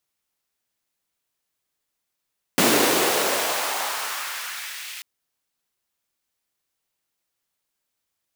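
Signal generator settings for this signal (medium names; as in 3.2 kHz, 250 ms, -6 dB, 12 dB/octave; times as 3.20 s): swept filtered noise pink, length 2.44 s highpass, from 250 Hz, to 2.5 kHz, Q 1.5, exponential, gain ramp -17.5 dB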